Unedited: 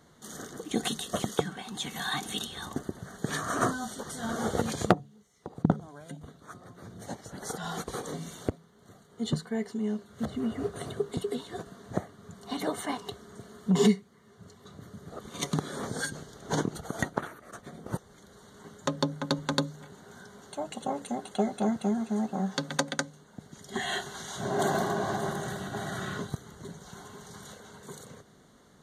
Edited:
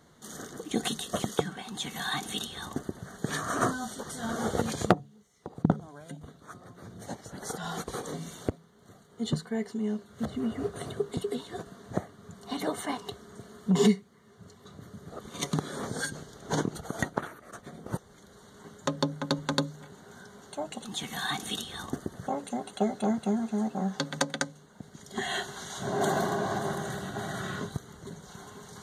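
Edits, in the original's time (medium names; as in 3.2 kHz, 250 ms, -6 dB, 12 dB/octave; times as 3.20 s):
1.68–3.10 s: copy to 20.85 s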